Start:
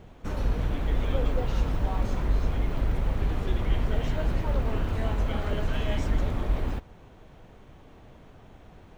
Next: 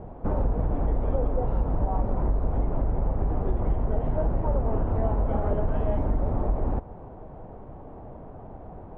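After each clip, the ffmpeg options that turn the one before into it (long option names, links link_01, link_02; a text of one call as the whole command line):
ffmpeg -i in.wav -af "acompressor=threshold=-29dB:ratio=4,lowpass=frequency=800:width_type=q:width=1.6,volume=7.5dB" out.wav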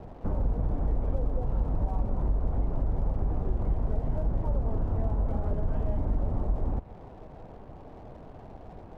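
ffmpeg -i in.wav -filter_complex "[0:a]acrossover=split=240[link_01][link_02];[link_02]acompressor=threshold=-40dB:ratio=2[link_03];[link_01][link_03]amix=inputs=2:normalize=0,aeval=exprs='sgn(val(0))*max(abs(val(0))-0.00178,0)':channel_layout=same,volume=-2dB" out.wav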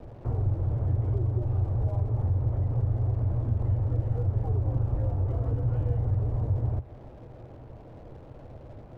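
ffmpeg -i in.wav -af "afreqshift=-140" out.wav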